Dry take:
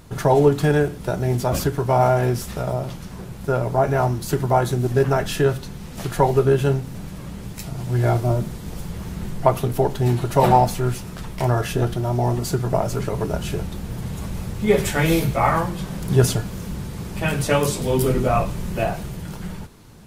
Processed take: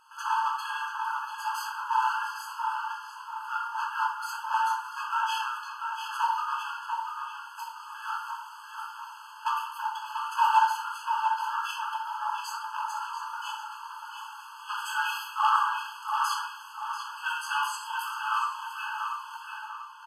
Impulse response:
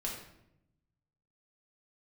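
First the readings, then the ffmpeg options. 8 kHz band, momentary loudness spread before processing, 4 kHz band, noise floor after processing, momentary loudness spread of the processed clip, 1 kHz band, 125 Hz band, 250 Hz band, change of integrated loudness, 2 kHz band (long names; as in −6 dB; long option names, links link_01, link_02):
−11.0 dB, 15 LU, −4.0 dB, −45 dBFS, 13 LU, −2.5 dB, below −40 dB, below −40 dB, −9.5 dB, −1.5 dB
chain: -filter_complex "[0:a]highshelf=frequency=4500:gain=-12,asoftclip=type=hard:threshold=-14dB,asplit=2[link_01][link_02];[link_02]adelay=690,lowpass=frequency=3700:poles=1,volume=-5dB,asplit=2[link_03][link_04];[link_04]adelay=690,lowpass=frequency=3700:poles=1,volume=0.42,asplit=2[link_05][link_06];[link_06]adelay=690,lowpass=frequency=3700:poles=1,volume=0.42,asplit=2[link_07][link_08];[link_08]adelay=690,lowpass=frequency=3700:poles=1,volume=0.42,asplit=2[link_09][link_10];[link_10]adelay=690,lowpass=frequency=3700:poles=1,volume=0.42[link_11];[link_01][link_03][link_05][link_07][link_09][link_11]amix=inputs=6:normalize=0[link_12];[1:a]atrim=start_sample=2205[link_13];[link_12][link_13]afir=irnorm=-1:irlink=0,aresample=32000,aresample=44100,afftfilt=real='re*eq(mod(floor(b*sr/1024/850),2),1)':imag='im*eq(mod(floor(b*sr/1024/850),2),1)':win_size=1024:overlap=0.75"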